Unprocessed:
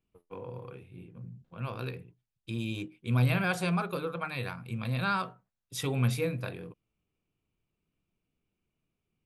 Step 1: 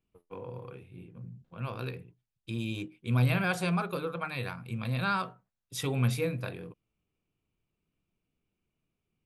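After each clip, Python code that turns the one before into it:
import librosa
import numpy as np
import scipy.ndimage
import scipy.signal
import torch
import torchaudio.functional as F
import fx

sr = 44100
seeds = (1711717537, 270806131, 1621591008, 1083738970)

y = x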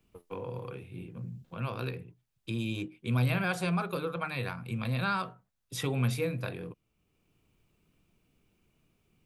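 y = fx.band_squash(x, sr, depth_pct=40)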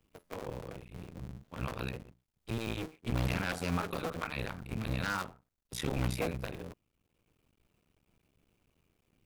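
y = fx.cycle_switch(x, sr, every=2, mode='muted')
y = 10.0 ** (-23.0 / 20.0) * (np.abs((y / 10.0 ** (-23.0 / 20.0) + 3.0) % 4.0 - 2.0) - 1.0)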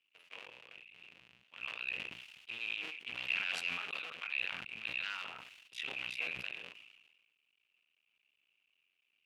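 y = fx.bandpass_q(x, sr, hz=2700.0, q=6.4)
y = fx.sustainer(y, sr, db_per_s=43.0)
y = y * librosa.db_to_amplitude(9.0)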